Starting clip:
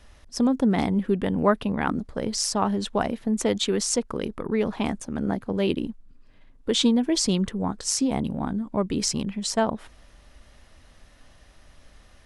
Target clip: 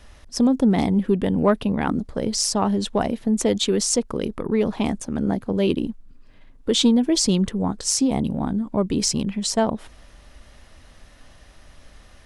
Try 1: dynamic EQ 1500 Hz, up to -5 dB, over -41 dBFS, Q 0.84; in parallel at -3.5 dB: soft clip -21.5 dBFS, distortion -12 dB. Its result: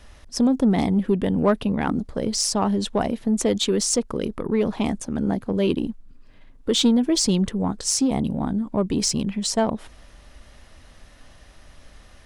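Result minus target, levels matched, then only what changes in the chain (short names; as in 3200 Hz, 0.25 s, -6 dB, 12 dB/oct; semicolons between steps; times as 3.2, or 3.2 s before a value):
soft clip: distortion +8 dB
change: soft clip -15 dBFS, distortion -19 dB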